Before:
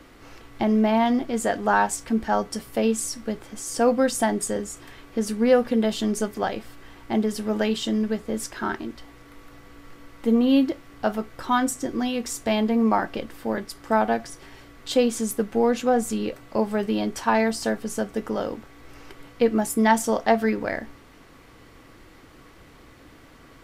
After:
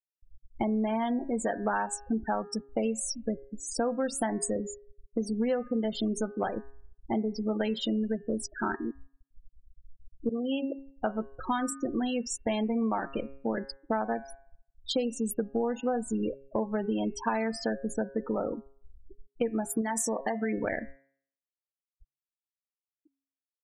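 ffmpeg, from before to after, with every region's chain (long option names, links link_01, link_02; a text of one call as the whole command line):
ffmpeg -i in.wav -filter_complex "[0:a]asettb=1/sr,asplit=3[link_01][link_02][link_03];[link_01]atrim=end=10.294[link_04];[link_02]atrim=start=10.29:end=10.72,asetpts=PTS-STARTPTS,afade=type=in:duration=0.004:curve=qsin,afade=type=out:start_time=0.426:duration=0.004:curve=qsin,agate=range=-33dB:threshold=-17dB:ratio=3:release=100:detection=peak,highpass=frequency=580:poles=1,aemphasis=mode=reproduction:type=cd[link_05];[link_03]atrim=start=10.716[link_06];[link_04][link_05]acrossfade=duration=0.004:curve1=hsin:curve2=qsin[link_07];[link_07][link_06]acrossfade=duration=0.004:curve1=qsin:curve2=hsin,asettb=1/sr,asplit=3[link_08][link_09][link_10];[link_08]atrim=end=19.814[link_11];[link_09]atrim=start=19.81:end=20.54,asetpts=PTS-STARTPTS,afade=type=in:duration=0.004:curve=qsin,afade=type=out:start_time=0.726:duration=0.004:curve=qsin,equalizer=frequency=8700:width_type=o:width=1.9:gain=12,acompressor=threshold=-22dB:ratio=6:attack=3.2:release=140:knee=1:detection=peak[link_12];[link_10]atrim=start=20.536[link_13];[link_11][link_12]acrossfade=duration=0.004:curve1=hsin:curve2=qsin[link_14];[link_14][link_13]acrossfade=duration=0.004:curve1=qsin:curve2=hsin,afftfilt=real='re*gte(hypot(re,im),0.0501)':imag='im*gte(hypot(re,im),0.0501)':win_size=1024:overlap=0.75,bandreject=frequency=136.7:width_type=h:width=4,bandreject=frequency=273.4:width_type=h:width=4,bandreject=frequency=410.1:width_type=h:width=4,bandreject=frequency=546.8:width_type=h:width=4,bandreject=frequency=683.5:width_type=h:width=4,bandreject=frequency=820.2:width_type=h:width=4,bandreject=frequency=956.9:width_type=h:width=4,bandreject=frequency=1093.6:width_type=h:width=4,bandreject=frequency=1230.3:width_type=h:width=4,bandreject=frequency=1367:width_type=h:width=4,bandreject=frequency=1503.7:width_type=h:width=4,bandreject=frequency=1640.4:width_type=h:width=4,bandreject=frequency=1777.1:width_type=h:width=4,bandreject=frequency=1913.8:width_type=h:width=4,bandreject=frequency=2050.5:width_type=h:width=4,bandreject=frequency=2187.2:width_type=h:width=4,bandreject=frequency=2323.9:width_type=h:width=4,bandreject=frequency=2460.6:width_type=h:width=4,bandreject=frequency=2597.3:width_type=h:width=4,bandreject=frequency=2734:width_type=h:width=4,bandreject=frequency=2870.7:width_type=h:width=4,acompressor=threshold=-26dB:ratio=6" out.wav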